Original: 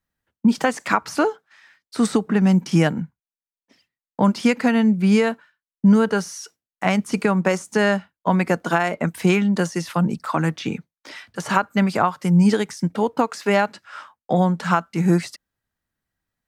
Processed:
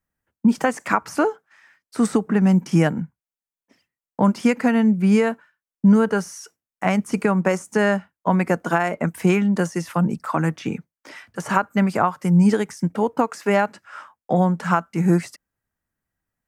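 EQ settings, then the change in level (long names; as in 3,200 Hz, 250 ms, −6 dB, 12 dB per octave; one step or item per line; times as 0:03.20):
parametric band 3,900 Hz −9 dB 0.91 octaves
0.0 dB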